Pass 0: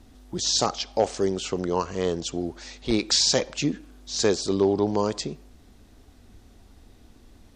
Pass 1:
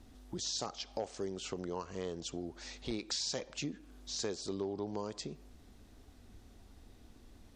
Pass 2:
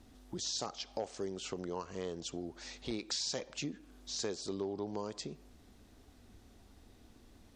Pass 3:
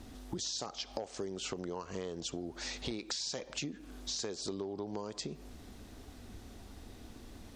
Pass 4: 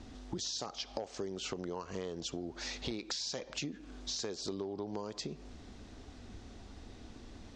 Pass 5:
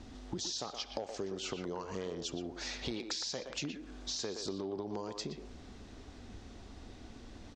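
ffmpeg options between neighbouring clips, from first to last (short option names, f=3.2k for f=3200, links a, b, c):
-af "acompressor=threshold=-34dB:ratio=2.5,volume=-5.5dB"
-af "lowshelf=f=71:g=-5.5"
-af "acompressor=threshold=-45dB:ratio=6,volume=9dB"
-af "lowpass=f=7.1k:w=0.5412,lowpass=f=7.1k:w=1.3066"
-filter_complex "[0:a]asplit=2[a][b];[b]adelay=120,highpass=300,lowpass=3.4k,asoftclip=type=hard:threshold=-30.5dB,volume=-6dB[c];[a][c]amix=inputs=2:normalize=0"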